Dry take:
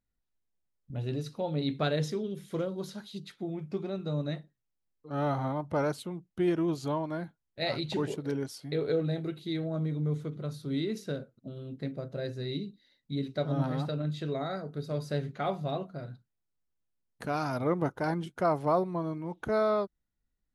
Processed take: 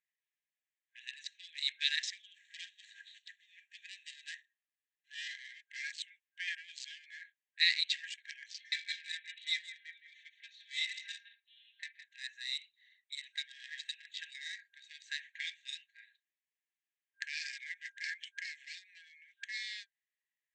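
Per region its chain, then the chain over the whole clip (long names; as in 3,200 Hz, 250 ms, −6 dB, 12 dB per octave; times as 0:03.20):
0:02.34–0:05.28: running median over 15 samples + high-shelf EQ 2,500 Hz +6.5 dB + notch filter 2,200 Hz
0:08.48–0:12.04: low-pass filter 5,000 Hz 24 dB per octave + comb filter 3.9 ms, depth 79% + single-tap delay 165 ms −10 dB
whole clip: adaptive Wiener filter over 9 samples; brick-wall band-pass 1,600–8,300 Hz; level +8.5 dB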